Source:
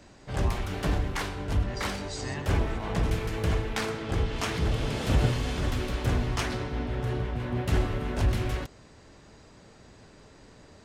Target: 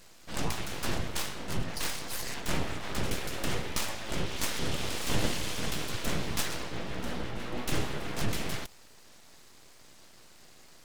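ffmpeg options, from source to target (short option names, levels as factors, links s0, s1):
-af "highshelf=f=2500:g=11.5,aeval=exprs='abs(val(0))':c=same,volume=0.708"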